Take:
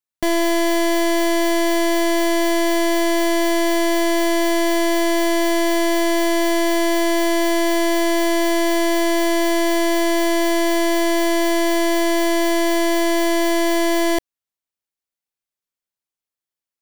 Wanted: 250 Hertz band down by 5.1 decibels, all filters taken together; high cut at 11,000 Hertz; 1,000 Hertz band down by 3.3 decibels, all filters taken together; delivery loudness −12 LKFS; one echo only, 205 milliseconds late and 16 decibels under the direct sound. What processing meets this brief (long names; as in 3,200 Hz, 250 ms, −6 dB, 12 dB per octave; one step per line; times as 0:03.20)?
low-pass filter 11,000 Hz
parametric band 250 Hz −8.5 dB
parametric band 1,000 Hz −4 dB
single-tap delay 205 ms −16 dB
level +9 dB